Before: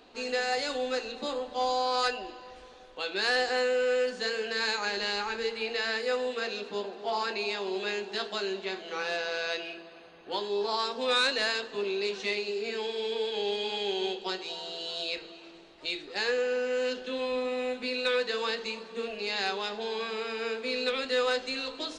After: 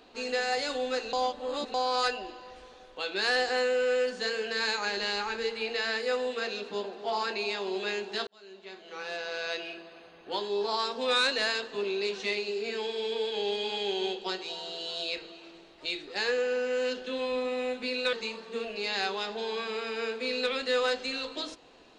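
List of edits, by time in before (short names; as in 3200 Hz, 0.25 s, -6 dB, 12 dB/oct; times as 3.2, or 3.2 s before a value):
1.13–1.74 reverse
8.27–9.73 fade in
18.13–18.56 cut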